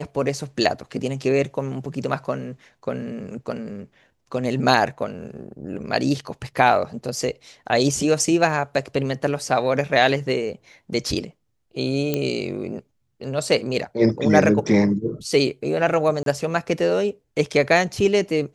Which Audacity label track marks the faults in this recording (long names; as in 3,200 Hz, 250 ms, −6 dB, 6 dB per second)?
12.140000	12.140000	click −8 dBFS
16.230000	16.260000	drop-out 32 ms